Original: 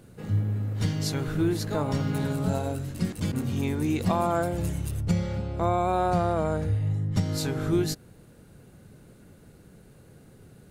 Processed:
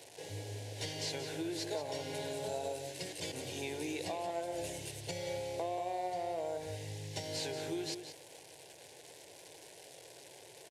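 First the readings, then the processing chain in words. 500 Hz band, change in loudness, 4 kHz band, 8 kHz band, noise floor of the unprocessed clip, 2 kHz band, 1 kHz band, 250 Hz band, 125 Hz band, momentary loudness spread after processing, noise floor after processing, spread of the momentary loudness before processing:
-8.5 dB, -12.0 dB, -2.0 dB, -3.5 dB, -53 dBFS, -7.0 dB, -11.5 dB, -16.5 dB, -20.5 dB, 15 LU, -56 dBFS, 5 LU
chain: delta modulation 64 kbps, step -42.5 dBFS; weighting filter A; compressor 10:1, threshold -33 dBFS, peak gain reduction 9.5 dB; fixed phaser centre 520 Hz, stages 4; outdoor echo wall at 31 m, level -8 dB; gain +1.5 dB

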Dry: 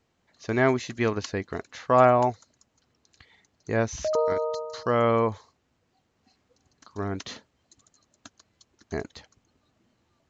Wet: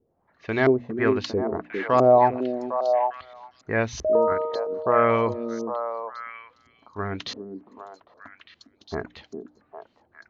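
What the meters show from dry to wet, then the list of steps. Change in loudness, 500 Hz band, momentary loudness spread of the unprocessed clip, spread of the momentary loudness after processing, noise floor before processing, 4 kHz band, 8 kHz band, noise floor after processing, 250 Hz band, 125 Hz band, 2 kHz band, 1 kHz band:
+2.0 dB, +4.0 dB, 19 LU, 21 LU, -72 dBFS, +2.5 dB, n/a, -67 dBFS, +2.5 dB, -1.0 dB, +2.5 dB, +3.0 dB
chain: notches 60/120/180/240/300 Hz; LFO low-pass saw up 1.5 Hz 380–5400 Hz; delay with a stepping band-pass 0.403 s, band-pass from 290 Hz, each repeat 1.4 oct, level -2 dB

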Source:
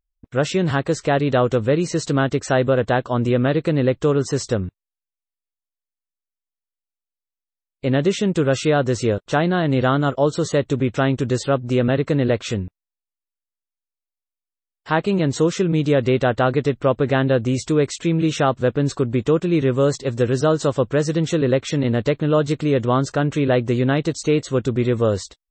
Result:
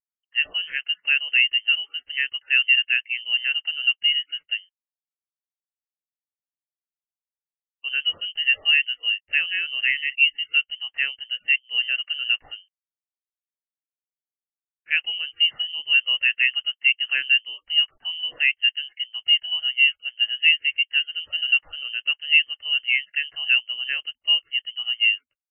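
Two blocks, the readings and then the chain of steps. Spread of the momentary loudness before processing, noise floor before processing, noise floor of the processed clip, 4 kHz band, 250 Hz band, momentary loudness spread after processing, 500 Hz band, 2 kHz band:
4 LU, under -85 dBFS, under -85 dBFS, +14.0 dB, under -40 dB, 9 LU, under -35 dB, +8.5 dB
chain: per-bin compression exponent 0.6; HPF 1200 Hz 6 dB/oct; inverted band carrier 3300 Hz; spectral expander 2.5:1

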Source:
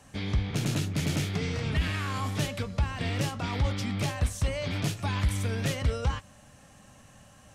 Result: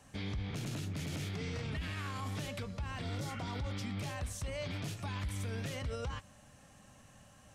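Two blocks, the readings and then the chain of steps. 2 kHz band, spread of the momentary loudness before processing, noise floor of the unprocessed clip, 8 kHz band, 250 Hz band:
-9.0 dB, 2 LU, -55 dBFS, -9.0 dB, -9.0 dB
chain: spectral repair 3.05–3.66, 1200–3200 Hz after; limiter -26 dBFS, peak gain reduction 9 dB; gain -5 dB

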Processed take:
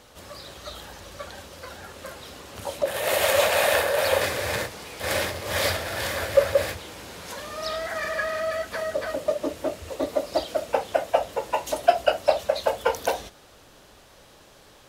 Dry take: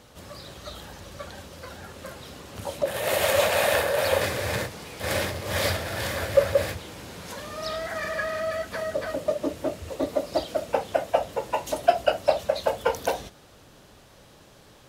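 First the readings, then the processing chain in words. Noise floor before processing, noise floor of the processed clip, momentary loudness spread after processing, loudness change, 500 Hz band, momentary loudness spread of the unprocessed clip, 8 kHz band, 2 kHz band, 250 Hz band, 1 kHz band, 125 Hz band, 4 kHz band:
-53 dBFS, -52 dBFS, 19 LU, +1.0 dB, +1.0 dB, 18 LU, +2.0 dB, +2.0 dB, -2.0 dB, +1.5 dB, -3.5 dB, +2.0 dB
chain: bell 140 Hz -7 dB 2.1 oct; gain +2 dB

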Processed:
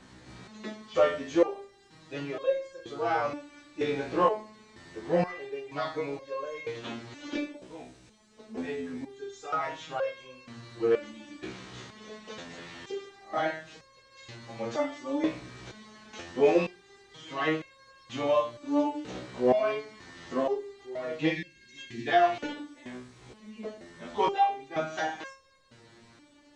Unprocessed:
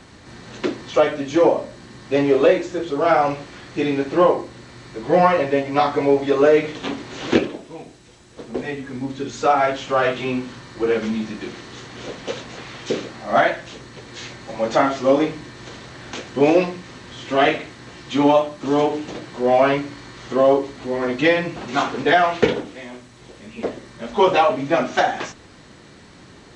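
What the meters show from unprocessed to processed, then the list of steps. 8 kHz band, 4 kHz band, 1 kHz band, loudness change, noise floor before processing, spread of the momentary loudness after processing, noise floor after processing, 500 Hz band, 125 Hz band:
-11.5 dB, -12.0 dB, -10.5 dB, -11.0 dB, -46 dBFS, 20 LU, -59 dBFS, -11.5 dB, -12.0 dB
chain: spectral gain 21.32–22.08, 430–1600 Hz -26 dB; stepped resonator 2.1 Hz 63–540 Hz

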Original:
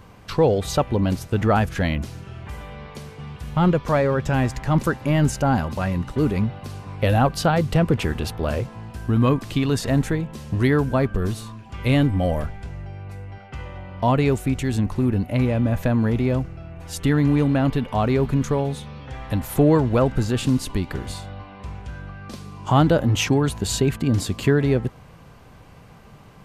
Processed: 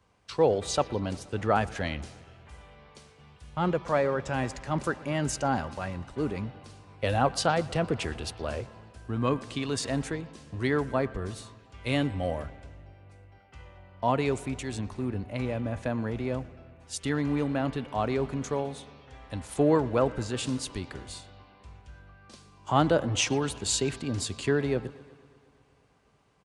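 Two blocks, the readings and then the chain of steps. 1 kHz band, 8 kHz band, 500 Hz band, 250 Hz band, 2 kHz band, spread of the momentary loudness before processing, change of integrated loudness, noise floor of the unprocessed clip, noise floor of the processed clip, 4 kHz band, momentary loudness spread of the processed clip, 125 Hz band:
-5.0 dB, -2.0 dB, -6.0 dB, -9.5 dB, -5.5 dB, 18 LU, -8.0 dB, -46 dBFS, -60 dBFS, -3.5 dB, 15 LU, -12.5 dB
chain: HPF 52 Hz; low shelf 75 Hz +11 dB; downsampling 22050 Hz; tone controls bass -10 dB, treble +2 dB; on a send: analogue delay 0.119 s, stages 4096, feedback 80%, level -21 dB; on the sum: three-band expander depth 40%; gain -6 dB

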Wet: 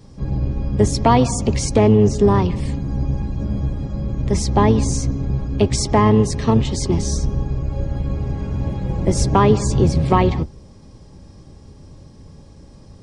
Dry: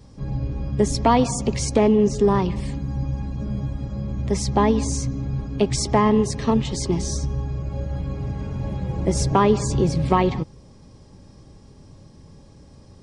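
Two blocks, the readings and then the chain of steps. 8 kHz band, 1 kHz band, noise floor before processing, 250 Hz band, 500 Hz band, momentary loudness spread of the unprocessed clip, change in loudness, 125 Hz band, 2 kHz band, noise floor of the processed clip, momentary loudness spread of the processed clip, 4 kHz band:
+2.5 dB, +2.5 dB, -48 dBFS, +3.0 dB, +2.5 dB, 11 LU, +3.5 dB, +6.0 dB, +2.5 dB, -44 dBFS, 10 LU, +2.5 dB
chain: octaver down 1 oct, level -1 dB; gain +2.5 dB

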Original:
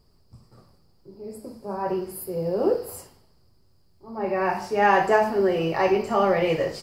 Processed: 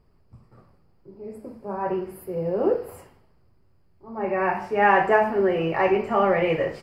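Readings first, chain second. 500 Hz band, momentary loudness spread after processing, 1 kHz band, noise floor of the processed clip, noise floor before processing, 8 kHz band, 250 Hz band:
0.0 dB, 20 LU, +0.5 dB, -60 dBFS, -60 dBFS, under -10 dB, 0.0 dB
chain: resonant high shelf 3300 Hz -11 dB, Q 1.5

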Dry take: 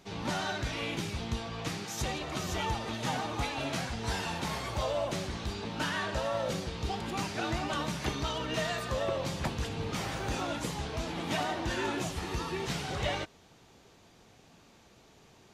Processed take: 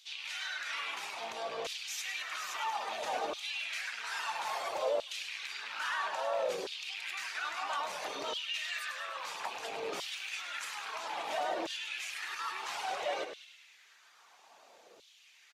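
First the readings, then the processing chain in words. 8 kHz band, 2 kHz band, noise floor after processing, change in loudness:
-3.0 dB, 0.0 dB, -62 dBFS, -2.5 dB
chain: rattling part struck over -38 dBFS, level -32 dBFS; reverb removal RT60 0.5 s; limiter -29.5 dBFS, peak gain reduction 10 dB; frequency-shifting echo 0.102 s, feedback 61%, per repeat -45 Hz, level -9.5 dB; LFO high-pass saw down 0.6 Hz 440–3500 Hz

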